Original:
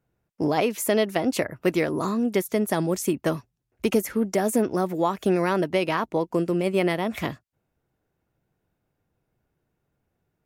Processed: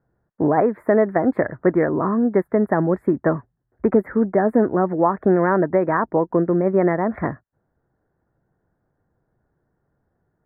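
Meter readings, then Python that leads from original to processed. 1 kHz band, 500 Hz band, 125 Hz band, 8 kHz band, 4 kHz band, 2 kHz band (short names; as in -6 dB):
+6.0 dB, +5.5 dB, +5.0 dB, under -35 dB, under -35 dB, +2.0 dB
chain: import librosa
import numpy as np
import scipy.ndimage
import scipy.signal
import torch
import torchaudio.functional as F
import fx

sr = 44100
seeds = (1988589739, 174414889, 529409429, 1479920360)

y = scipy.signal.sosfilt(scipy.signal.ellip(4, 1.0, 40, 1800.0, 'lowpass', fs=sr, output='sos'), x)
y = y * librosa.db_to_amplitude(6.0)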